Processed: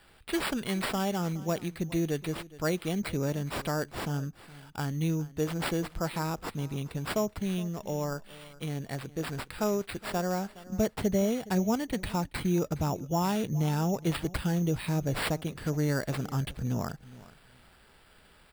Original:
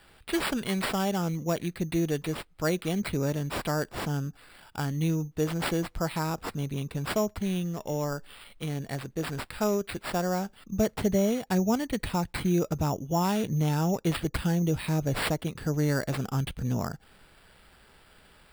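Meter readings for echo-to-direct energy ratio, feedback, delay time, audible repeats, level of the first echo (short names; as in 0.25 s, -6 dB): -19.0 dB, 18%, 0.416 s, 2, -19.0 dB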